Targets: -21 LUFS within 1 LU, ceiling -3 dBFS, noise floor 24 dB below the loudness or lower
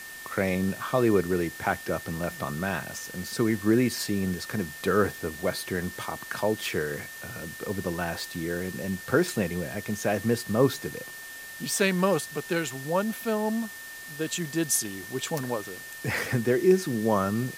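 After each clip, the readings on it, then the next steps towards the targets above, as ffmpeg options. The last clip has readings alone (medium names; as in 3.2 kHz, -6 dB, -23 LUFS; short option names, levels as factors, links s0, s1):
steady tone 1.8 kHz; tone level -41 dBFS; noise floor -42 dBFS; noise floor target -52 dBFS; loudness -28.0 LUFS; peak level -8.5 dBFS; loudness target -21.0 LUFS
-> -af "bandreject=f=1800:w=30"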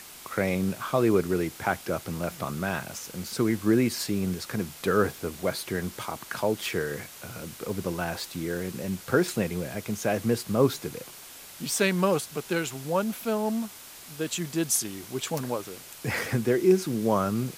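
steady tone not found; noise floor -46 dBFS; noise floor target -52 dBFS
-> -af "afftdn=nr=6:nf=-46"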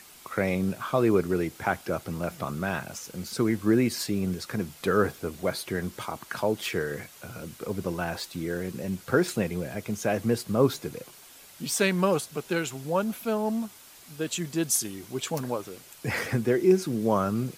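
noise floor -51 dBFS; noise floor target -53 dBFS
-> -af "afftdn=nr=6:nf=-51"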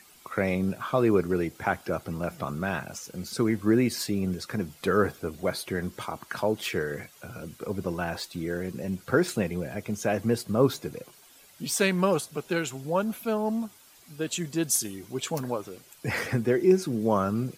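noise floor -55 dBFS; loudness -28.5 LUFS; peak level -9.0 dBFS; loudness target -21.0 LUFS
-> -af "volume=2.37,alimiter=limit=0.708:level=0:latency=1"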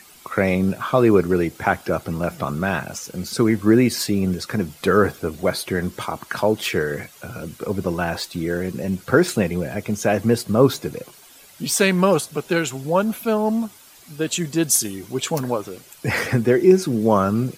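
loudness -21.0 LUFS; peak level -3.0 dBFS; noise floor -47 dBFS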